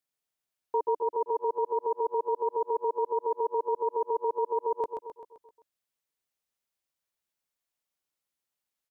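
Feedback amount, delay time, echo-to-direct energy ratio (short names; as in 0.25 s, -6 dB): 52%, 0.13 s, -4.5 dB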